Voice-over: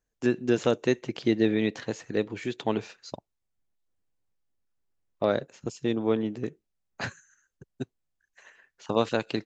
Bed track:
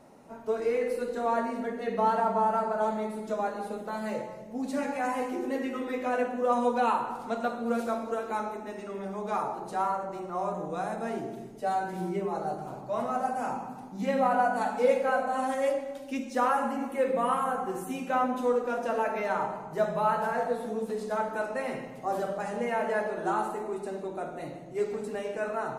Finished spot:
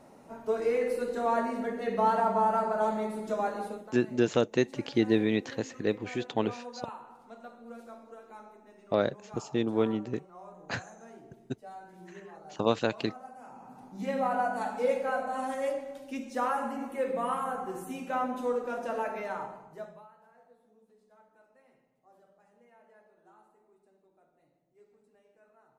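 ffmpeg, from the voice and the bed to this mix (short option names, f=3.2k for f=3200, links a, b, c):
-filter_complex "[0:a]adelay=3700,volume=-1.5dB[a];[1:a]volume=13dB,afade=t=out:st=3.62:d=0.31:silence=0.141254,afade=t=in:st=13.52:d=0.46:silence=0.223872,afade=t=out:st=19.03:d=1.05:silence=0.0421697[b];[a][b]amix=inputs=2:normalize=0"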